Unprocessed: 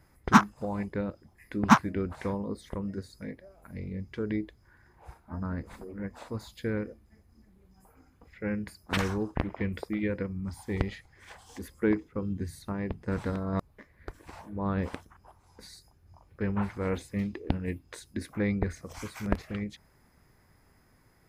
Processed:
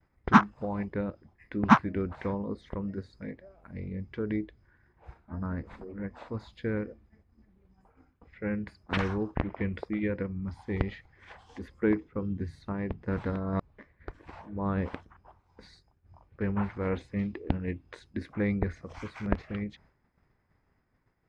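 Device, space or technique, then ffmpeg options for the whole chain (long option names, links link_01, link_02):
hearing-loss simulation: -filter_complex "[0:a]lowpass=3200,agate=range=-33dB:threshold=-55dB:ratio=3:detection=peak,asettb=1/sr,asplit=3[link_01][link_02][link_03];[link_01]atrim=end=4.444[link_04];[link_02]atrim=start=4.44:end=5.4,asetpts=PTS-STARTPTS,afade=type=in:duration=0.004:curve=qsin,afade=type=out:start_time=0.956:duration=0.004:curve=qsin,equalizer=frequency=920:width_type=o:width=0.99:gain=-4.5[link_05];[link_03]atrim=start=5.396[link_06];[link_04][link_05]acrossfade=duration=0.004:curve1=hsin:curve2=qsin[link_07];[link_07][link_06]acrossfade=duration=0.004:curve1=qsin:curve2=hsin"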